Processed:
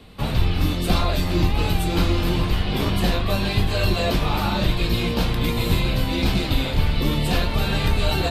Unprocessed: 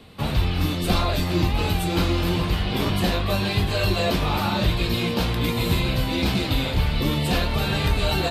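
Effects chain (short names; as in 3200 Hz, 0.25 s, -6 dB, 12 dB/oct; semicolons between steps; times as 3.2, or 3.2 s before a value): octaver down 2 oct, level -1 dB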